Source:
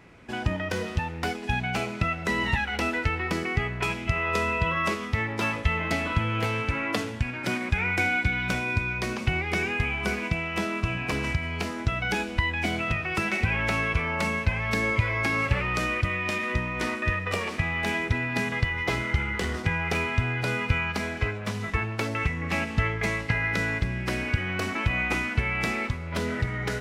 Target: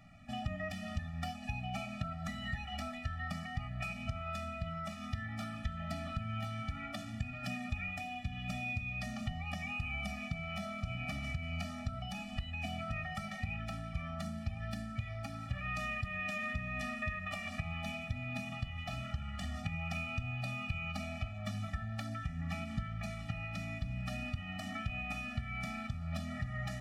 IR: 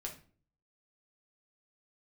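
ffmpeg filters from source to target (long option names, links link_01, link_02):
-filter_complex "[0:a]acompressor=threshold=-30dB:ratio=6,asplit=2[link_01][link_02];[1:a]atrim=start_sample=2205,lowshelf=frequency=70:gain=7.5[link_03];[link_02][link_03]afir=irnorm=-1:irlink=0,volume=-7.5dB[link_04];[link_01][link_04]amix=inputs=2:normalize=0,afftfilt=real='re*eq(mod(floor(b*sr/1024/280),2),0)':imag='im*eq(mod(floor(b*sr/1024/280),2),0)':win_size=1024:overlap=0.75,volume=-6dB"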